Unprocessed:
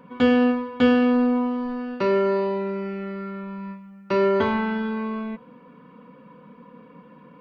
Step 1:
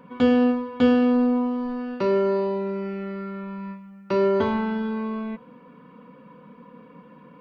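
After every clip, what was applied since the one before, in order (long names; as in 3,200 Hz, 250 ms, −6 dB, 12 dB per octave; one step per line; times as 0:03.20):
dynamic equaliser 2,000 Hz, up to −6 dB, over −40 dBFS, Q 0.85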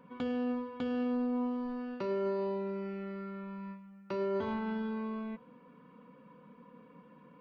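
brickwall limiter −18.5 dBFS, peak gain reduction 11 dB
level −9 dB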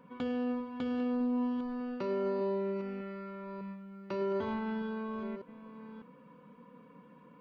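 delay that plays each chunk backwards 602 ms, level −12 dB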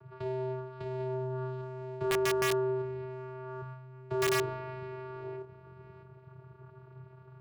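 flutter between parallel walls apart 4.9 metres, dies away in 0.22 s
channel vocoder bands 8, square 129 Hz
wrap-around overflow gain 22.5 dB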